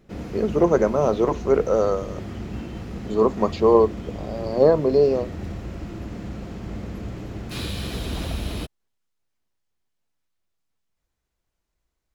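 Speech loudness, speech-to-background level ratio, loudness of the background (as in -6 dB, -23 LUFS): -20.5 LUFS, 13.0 dB, -33.5 LUFS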